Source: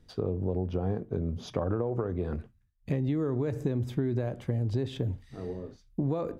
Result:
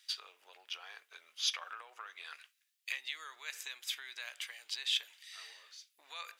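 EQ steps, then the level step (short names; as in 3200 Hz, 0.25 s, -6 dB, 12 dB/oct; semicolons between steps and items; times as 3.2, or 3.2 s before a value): HPF 1500 Hz 24 dB/oct; resonant high shelf 2100 Hz +6 dB, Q 1.5; +7.0 dB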